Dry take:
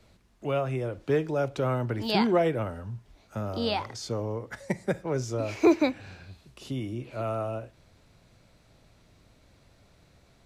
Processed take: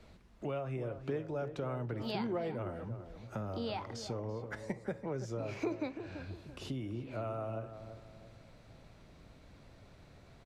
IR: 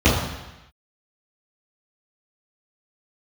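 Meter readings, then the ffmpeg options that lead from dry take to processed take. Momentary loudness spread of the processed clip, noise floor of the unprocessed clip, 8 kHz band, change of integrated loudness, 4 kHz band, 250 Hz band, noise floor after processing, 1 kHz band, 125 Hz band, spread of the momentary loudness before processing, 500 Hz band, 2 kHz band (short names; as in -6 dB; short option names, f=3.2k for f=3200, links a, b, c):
21 LU, -61 dBFS, -10.5 dB, -11.0 dB, -11.5 dB, -11.0 dB, -59 dBFS, -10.5 dB, -8.0 dB, 17 LU, -10.5 dB, -10.5 dB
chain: -filter_complex "[0:a]acompressor=threshold=-41dB:ratio=3,flanger=delay=4.3:depth=3.8:regen=-83:speed=0.64:shape=sinusoidal,highshelf=f=4.7k:g=-9,asplit=2[a][b];[b]adelay=335,lowpass=f=1.4k:p=1,volume=-9.5dB,asplit=2[c][d];[d]adelay=335,lowpass=f=1.4k:p=1,volume=0.39,asplit=2[e][f];[f]adelay=335,lowpass=f=1.4k:p=1,volume=0.39,asplit=2[g][h];[h]adelay=335,lowpass=f=1.4k:p=1,volume=0.39[i];[c][e][g][i]amix=inputs=4:normalize=0[j];[a][j]amix=inputs=2:normalize=0,volume=6.5dB"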